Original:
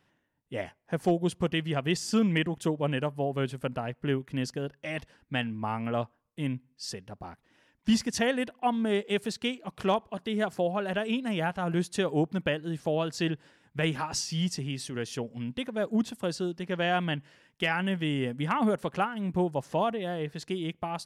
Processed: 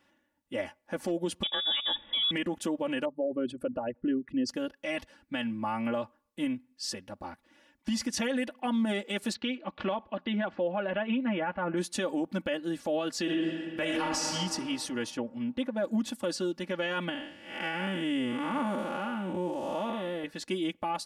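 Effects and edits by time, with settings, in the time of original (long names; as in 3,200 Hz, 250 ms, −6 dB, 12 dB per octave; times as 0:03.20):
0:01.43–0:02.31: voice inversion scrambler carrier 3,600 Hz
0:03.05–0:04.49: spectral envelope exaggerated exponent 2
0:06.44–0:08.12: downward compressor, threshold −28 dBFS
0:09.33–0:11.76: low-pass filter 4,300 Hz → 2,300 Hz 24 dB per octave
0:13.21–0:14.28: thrown reverb, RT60 2.1 s, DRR 0 dB
0:15.10–0:15.84: high-shelf EQ 3,300 Hz −12 dB
0:17.09–0:20.24: spectrum smeared in time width 268 ms
whole clip: low-shelf EQ 90 Hz −9.5 dB; comb filter 3.5 ms, depth 93%; brickwall limiter −22 dBFS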